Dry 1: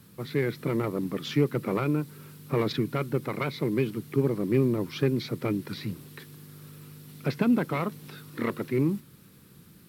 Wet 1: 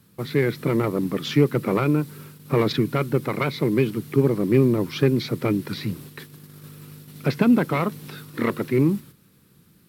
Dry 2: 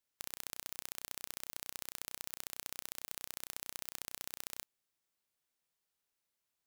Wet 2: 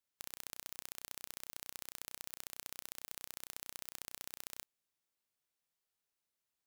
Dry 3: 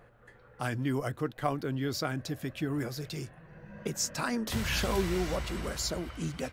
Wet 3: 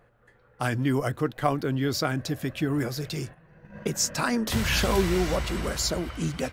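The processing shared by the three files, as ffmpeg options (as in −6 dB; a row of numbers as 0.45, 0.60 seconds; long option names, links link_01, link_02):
-af "agate=range=-9dB:threshold=-46dB:ratio=16:detection=peak,volume=6dB"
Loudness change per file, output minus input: +6.0, −3.0, +6.0 LU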